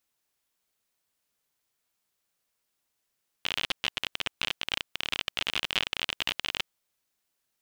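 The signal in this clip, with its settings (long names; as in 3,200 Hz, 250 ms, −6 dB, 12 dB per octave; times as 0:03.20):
Geiger counter clicks 41 per second −11.5 dBFS 3.21 s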